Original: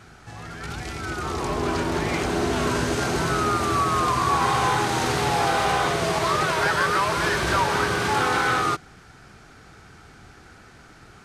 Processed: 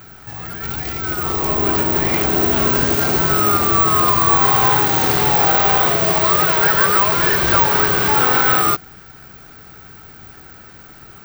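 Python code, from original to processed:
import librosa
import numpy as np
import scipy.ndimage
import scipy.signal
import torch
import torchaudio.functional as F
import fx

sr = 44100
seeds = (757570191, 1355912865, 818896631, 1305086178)

y = (np.kron(scipy.signal.resample_poly(x, 1, 2), np.eye(2)[0]) * 2)[:len(x)]
y = y * librosa.db_to_amplitude(4.5)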